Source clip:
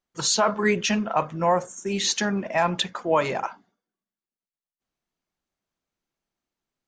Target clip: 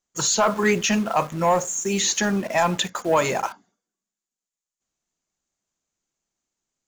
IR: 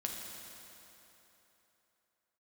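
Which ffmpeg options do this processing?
-filter_complex "[0:a]lowpass=frequency=7000:width_type=q:width=6.3,asplit=2[link_01][link_02];[link_02]acrusher=bits=5:mix=0:aa=0.000001,volume=-5.5dB[link_03];[link_01][link_03]amix=inputs=2:normalize=0,acrossover=split=3300[link_04][link_05];[link_05]acompressor=threshold=-22dB:ratio=4:attack=1:release=60[link_06];[link_04][link_06]amix=inputs=2:normalize=0,aeval=exprs='0.562*(cos(1*acos(clip(val(0)/0.562,-1,1)))-cos(1*PI/2))+0.0398*(cos(5*acos(clip(val(0)/0.562,-1,1)))-cos(5*PI/2))':channel_layout=same,volume=-3dB"

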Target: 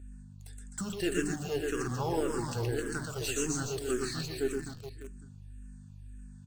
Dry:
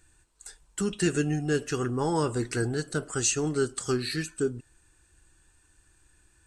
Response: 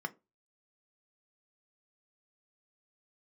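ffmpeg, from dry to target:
-filter_complex "[0:a]bandreject=frequency=50:width_type=h:width=6,bandreject=frequency=100:width_type=h:width=6,bandreject=frequency=150:width_type=h:width=6,bandreject=frequency=200:width_type=h:width=6,bandreject=frequency=250:width_type=h:width=6,bandreject=frequency=300:width_type=h:width=6,aecho=1:1:120|258|416.7|599.2|809.1:0.631|0.398|0.251|0.158|0.1,asplit=2[link_01][link_02];[link_02]acrusher=bits=3:dc=4:mix=0:aa=0.000001,volume=-4dB[link_03];[link_01][link_03]amix=inputs=2:normalize=0,aeval=exprs='val(0)+0.0141*(sin(2*PI*50*n/s)+sin(2*PI*2*50*n/s)/2+sin(2*PI*3*50*n/s)/3+sin(2*PI*4*50*n/s)/4+sin(2*PI*5*50*n/s)/5)':channel_layout=same,asplit=2[link_04][link_05];[link_05]afreqshift=-1.8[link_06];[link_04][link_06]amix=inputs=2:normalize=1,volume=-6dB"

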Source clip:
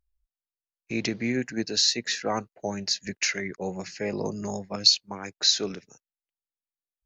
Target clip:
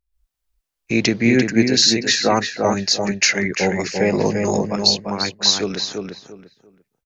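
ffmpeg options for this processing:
ffmpeg -i in.wav -filter_complex "[0:a]dynaudnorm=framelen=100:gausssize=3:maxgain=13dB,asplit=2[link_01][link_02];[link_02]adelay=344,lowpass=frequency=2800:poles=1,volume=-4dB,asplit=2[link_03][link_04];[link_04]adelay=344,lowpass=frequency=2800:poles=1,volume=0.25,asplit=2[link_05][link_06];[link_06]adelay=344,lowpass=frequency=2800:poles=1,volume=0.25[link_07];[link_01][link_03][link_05][link_07]amix=inputs=4:normalize=0,volume=-1dB" out.wav

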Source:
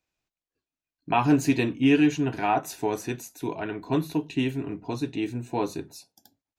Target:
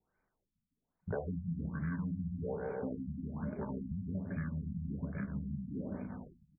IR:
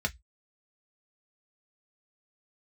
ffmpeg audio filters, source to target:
-filter_complex "[0:a]asetrate=26990,aresample=44100,atempo=1.63392,acrossover=split=280|3200[link_01][link_02][link_03];[link_03]acrusher=samples=18:mix=1:aa=0.000001[link_04];[link_01][link_02][link_04]amix=inputs=3:normalize=0,aemphasis=mode=reproduction:type=50fm,bandreject=frequency=60:width_type=h:width=6,bandreject=frequency=120:width_type=h:width=6,bandreject=frequency=180:width_type=h:width=6,bandreject=frequency=240:width_type=h:width=6,bandreject=frequency=300:width_type=h:width=6,bandreject=frequency=360:width_type=h:width=6,bandreject=frequency=420:width_type=h:width=6,bandreject=frequency=480:width_type=h:width=6,bandreject=frequency=540:width_type=h:width=6,bandreject=frequency=600:width_type=h:width=6,aecho=1:1:150|255|328.5|380|416:0.631|0.398|0.251|0.158|0.1,acompressor=threshold=-40dB:ratio=6,afftfilt=real='re*lt(b*sr/1024,230*pow(2500/230,0.5+0.5*sin(2*PI*1.2*pts/sr)))':imag='im*lt(b*sr/1024,230*pow(2500/230,0.5+0.5*sin(2*PI*1.2*pts/sr)))':win_size=1024:overlap=0.75,volume=3.5dB"

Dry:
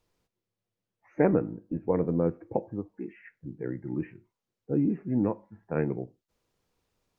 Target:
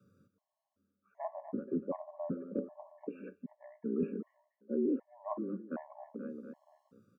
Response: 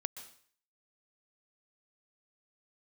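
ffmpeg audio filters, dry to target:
-af "highshelf=frequency=1600:width_type=q:width=3:gain=-7.5,afreqshift=90,equalizer=frequency=200:width=1.4:gain=10.5,aecho=1:1:239|478|717|956:0.0891|0.0499|0.0279|0.0157,areverse,acompressor=threshold=-37dB:ratio=4,areverse,afftfilt=real='re*gt(sin(2*PI*1.3*pts/sr)*(1-2*mod(floor(b*sr/1024/560),2)),0)':imag='im*gt(sin(2*PI*1.3*pts/sr)*(1-2*mod(floor(b*sr/1024/560),2)),0)':win_size=1024:overlap=0.75,volume=5dB"

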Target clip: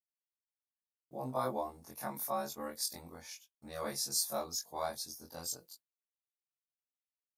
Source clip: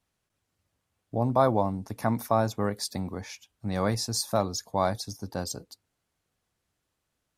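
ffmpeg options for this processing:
ffmpeg -i in.wav -af "afftfilt=real='re':imag='-im':win_size=2048:overlap=0.75,agate=range=-33dB:threshold=-51dB:ratio=3:detection=peak,aemphasis=mode=production:type=bsi,volume=-6.5dB" out.wav

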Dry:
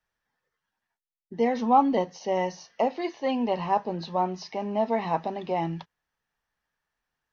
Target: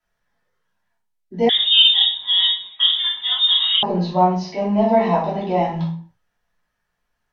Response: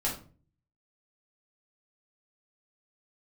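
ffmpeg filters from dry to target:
-filter_complex "[1:a]atrim=start_sample=2205,afade=type=out:start_time=0.31:duration=0.01,atrim=end_sample=14112,asetrate=33957,aresample=44100[link_01];[0:a][link_01]afir=irnorm=-1:irlink=0,asettb=1/sr,asplit=3[link_02][link_03][link_04];[link_02]atrim=end=1.494[link_05];[link_03]atrim=start=1.49:end=3.83,asetpts=PTS-STARTPTS,afade=type=in:duration=0.004:curve=qsin,afade=type=out:start_time=2.336:duration=0.004:curve=qsin,lowpass=frequency=3300:width_type=q:width=0.5098,lowpass=frequency=3300:width_type=q:width=0.6013,lowpass=frequency=3300:width_type=q:width=0.9,lowpass=frequency=3300:width_type=q:width=2.563,afreqshift=-3900[link_06];[link_04]atrim=start=3.826[link_07];[link_05][link_06]acrossfade=duration=0.004:curve1=hsin:curve2=qsin[link_08];[link_08][link_07]acrossfade=duration=0.004:curve1=qsin:curve2=hsin,volume=-1dB"

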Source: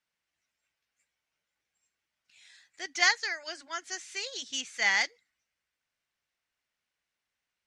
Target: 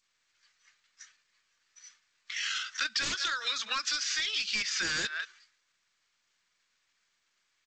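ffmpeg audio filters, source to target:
ffmpeg -i in.wav -filter_complex "[0:a]asplit=2[link_01][link_02];[link_02]adelay=180,highpass=300,lowpass=3400,asoftclip=type=hard:threshold=-19.5dB,volume=-26dB[link_03];[link_01][link_03]amix=inputs=2:normalize=0,acrossover=split=410|1000[link_04][link_05][link_06];[link_06]aeval=exprs='0.282*sin(PI/2*7.94*val(0)/0.282)':channel_layout=same[link_07];[link_04][link_05][link_07]amix=inputs=3:normalize=0,bandreject=frequency=950:width=7.6,alimiter=limit=-19dB:level=0:latency=1:release=145,equalizer=frequency=1000:width_type=o:width=1.3:gain=-10,acompressor=threshold=-33dB:ratio=10,asetrate=35002,aresample=44100,atempo=1.25992,agate=range=-33dB:threshold=-56dB:ratio=3:detection=peak,volume=5dB" -ar 16000 -c:a g722 out.g722

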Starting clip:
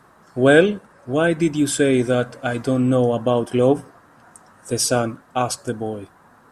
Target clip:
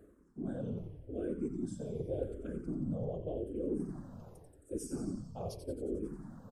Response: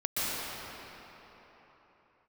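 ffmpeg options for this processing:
-filter_complex "[0:a]lowshelf=frequency=620:width_type=q:width=1.5:gain=11.5,afftfilt=real='hypot(re,im)*cos(2*PI*random(0))':imag='hypot(re,im)*sin(2*PI*random(1))':win_size=512:overlap=0.75,areverse,acompressor=threshold=-39dB:ratio=4,areverse,equalizer=frequency=2300:width_type=o:width=2.7:gain=-8,asplit=9[link_01][link_02][link_03][link_04][link_05][link_06][link_07][link_08][link_09];[link_02]adelay=89,afreqshift=-63,volume=-8dB[link_10];[link_03]adelay=178,afreqshift=-126,volume=-12.2dB[link_11];[link_04]adelay=267,afreqshift=-189,volume=-16.3dB[link_12];[link_05]adelay=356,afreqshift=-252,volume=-20.5dB[link_13];[link_06]adelay=445,afreqshift=-315,volume=-24.6dB[link_14];[link_07]adelay=534,afreqshift=-378,volume=-28.8dB[link_15];[link_08]adelay=623,afreqshift=-441,volume=-32.9dB[link_16];[link_09]adelay=712,afreqshift=-504,volume=-37.1dB[link_17];[link_01][link_10][link_11][link_12][link_13][link_14][link_15][link_16][link_17]amix=inputs=9:normalize=0,asplit=2[link_18][link_19];[link_19]afreqshift=-0.86[link_20];[link_18][link_20]amix=inputs=2:normalize=1,volume=1.5dB"

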